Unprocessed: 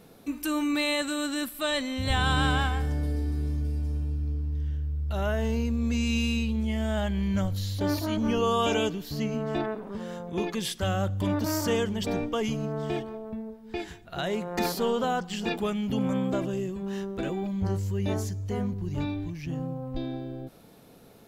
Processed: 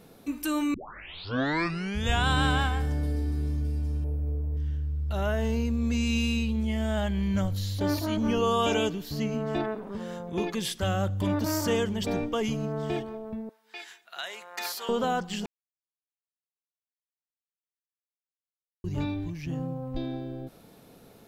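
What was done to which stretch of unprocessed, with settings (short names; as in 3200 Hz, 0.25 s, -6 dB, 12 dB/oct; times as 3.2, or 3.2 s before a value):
0.74 tape start 1.53 s
4.04–4.57 EQ curve 130 Hz 0 dB, 240 Hz -6 dB, 550 Hz +12 dB, 840 Hz +4 dB, 1400 Hz -4 dB, 2400 Hz -6 dB, 3600 Hz -14 dB, 6800 Hz -16 dB, 12000 Hz +5 dB
13.49–14.89 HPF 1200 Hz
15.46–18.84 mute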